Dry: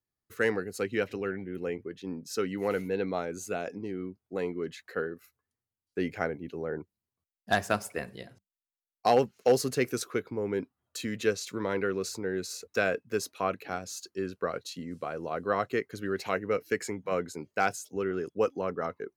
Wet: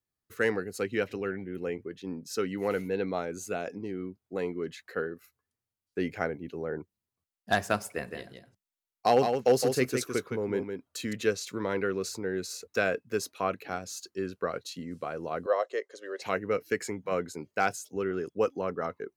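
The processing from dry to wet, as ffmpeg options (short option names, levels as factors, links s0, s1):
-filter_complex "[0:a]asettb=1/sr,asplit=3[s0][s1][s2];[s0]atrim=end=7.944[s3];[s1]atrim=start=7.94:end=11.13,asetpts=PTS-STARTPTS,afade=t=in:d=0.004:c=qsin,afade=t=out:st=3.186:d=0.004:c=qsin,aecho=1:1:163:0.501,atrim=end_sample=140679[s4];[s2]atrim=start=11.126[s5];[s3][s4]acrossfade=d=0.004:c1=hsin:c2=qsin[s6];[s6][s5]acrossfade=d=0.004:c1=qsin:c2=hsin,asettb=1/sr,asplit=3[s7][s8][s9];[s7]atrim=end=15.464[s10];[s8]atrim=start=15.46:end=16.22,asetpts=PTS-STARTPTS,afade=t=in:d=0.004:c=qsin,afade=t=out:st=0.756:d=0.004:c=qsin,highpass=f=460:w=0.5412,highpass=f=460:w=1.3066,equalizer=f=560:t=q:w=4:g=9,equalizer=f=810:t=q:w=4:g=-4,equalizer=f=1400:t=q:w=4:g=-9,equalizer=f=2400:t=q:w=4:g=-10,equalizer=f=4400:t=q:w=4:g=-4,lowpass=f=8100:w=0.5412,lowpass=f=8100:w=1.3066[s11];[s9]atrim=start=16.216[s12];[s10][s11]acrossfade=d=0.004:c1=hsin:c2=qsin[s13];[s13][s12]acrossfade=d=0.004:c1=qsin:c2=hsin"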